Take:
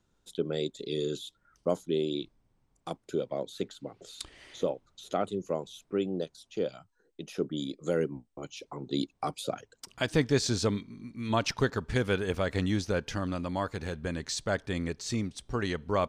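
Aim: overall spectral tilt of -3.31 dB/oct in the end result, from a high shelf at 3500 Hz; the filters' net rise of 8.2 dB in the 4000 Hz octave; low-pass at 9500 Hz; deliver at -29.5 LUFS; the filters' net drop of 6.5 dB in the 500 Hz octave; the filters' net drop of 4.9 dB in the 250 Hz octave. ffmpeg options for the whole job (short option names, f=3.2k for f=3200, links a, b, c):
-af "lowpass=9.5k,equalizer=f=250:t=o:g=-4.5,equalizer=f=500:t=o:g=-7,highshelf=f=3.5k:g=3,equalizer=f=4k:t=o:g=8,volume=3.5dB"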